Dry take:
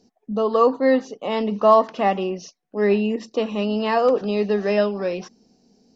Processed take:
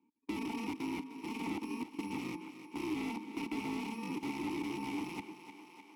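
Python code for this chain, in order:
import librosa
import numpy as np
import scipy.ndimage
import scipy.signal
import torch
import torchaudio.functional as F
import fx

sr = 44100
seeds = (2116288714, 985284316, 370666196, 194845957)

y = fx.bit_reversed(x, sr, seeds[0], block=64)
y = fx.leveller(y, sr, passes=3)
y = fx.echo_feedback(y, sr, ms=120, feedback_pct=41, wet_db=-21.0)
y = fx.level_steps(y, sr, step_db=19)
y = fx.high_shelf(y, sr, hz=2600.0, db=-10.0)
y = (np.mod(10.0 ** (20.5 / 20.0) * y + 1.0, 2.0) - 1.0) / 10.0 ** (20.5 / 20.0)
y = fx.vowel_filter(y, sr, vowel='u')
y = fx.echo_thinned(y, sr, ms=304, feedback_pct=55, hz=250.0, wet_db=-13.5)
y = fx.band_squash(y, sr, depth_pct=40)
y = F.gain(torch.from_numpy(y), 3.5).numpy()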